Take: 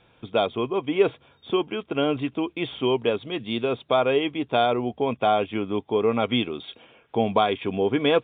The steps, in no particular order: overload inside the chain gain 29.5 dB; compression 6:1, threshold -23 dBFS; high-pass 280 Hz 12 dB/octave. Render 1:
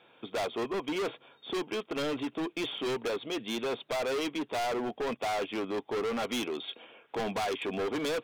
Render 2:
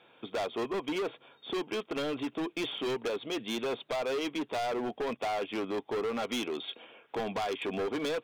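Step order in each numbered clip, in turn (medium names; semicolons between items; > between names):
high-pass > overload inside the chain > compression; high-pass > compression > overload inside the chain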